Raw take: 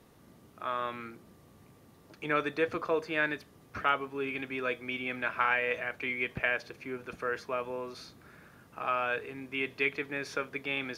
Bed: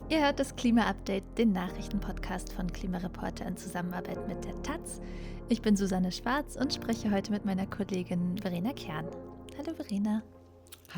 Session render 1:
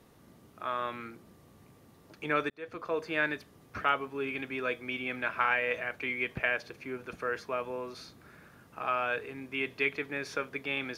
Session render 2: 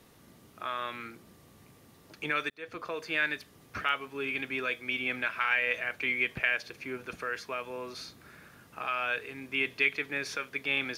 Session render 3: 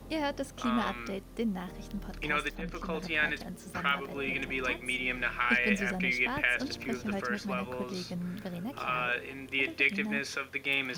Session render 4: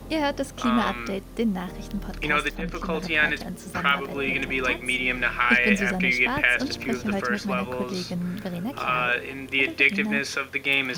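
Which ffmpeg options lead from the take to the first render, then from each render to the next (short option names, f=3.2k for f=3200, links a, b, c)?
-filter_complex "[0:a]asplit=2[a][b];[a]atrim=end=2.5,asetpts=PTS-STARTPTS,afade=t=out:st=2.496:d=0.004:c=hsin[c];[b]atrim=start=2.5,asetpts=PTS-STARTPTS,afade=t=in:d=0.6[d];[c][d]concat=n=2:v=0:a=1"
-filter_complex "[0:a]acrossover=split=1700[a][b];[a]alimiter=level_in=4dB:limit=-24dB:level=0:latency=1:release=377,volume=-4dB[c];[b]acontrast=35[d];[c][d]amix=inputs=2:normalize=0"
-filter_complex "[1:a]volume=-5.5dB[a];[0:a][a]amix=inputs=2:normalize=0"
-af "volume=7.5dB"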